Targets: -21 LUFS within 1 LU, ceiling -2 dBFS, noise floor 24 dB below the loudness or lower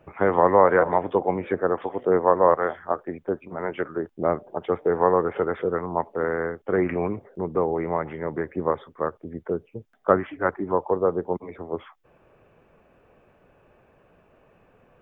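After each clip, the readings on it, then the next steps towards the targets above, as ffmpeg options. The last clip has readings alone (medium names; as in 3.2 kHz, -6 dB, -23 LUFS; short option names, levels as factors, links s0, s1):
loudness -24.5 LUFS; peak level -2.5 dBFS; loudness target -21.0 LUFS
-> -af "volume=1.5,alimiter=limit=0.794:level=0:latency=1"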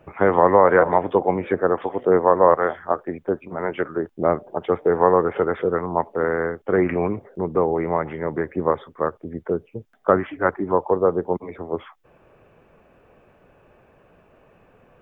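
loudness -21.5 LUFS; peak level -2.0 dBFS; noise floor -57 dBFS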